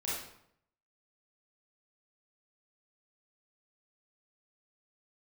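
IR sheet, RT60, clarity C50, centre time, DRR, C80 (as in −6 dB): 0.70 s, −1.0 dB, 66 ms, −8.0 dB, 4.0 dB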